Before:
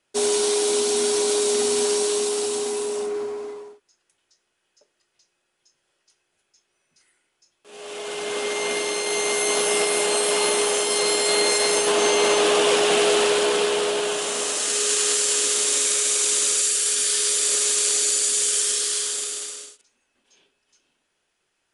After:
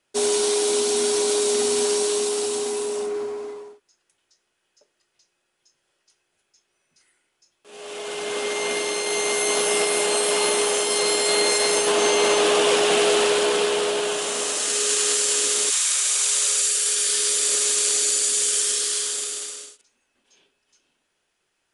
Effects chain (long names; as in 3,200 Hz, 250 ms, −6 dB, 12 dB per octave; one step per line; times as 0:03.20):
0:15.69–0:17.07: high-pass filter 870 Hz → 310 Hz 24 dB per octave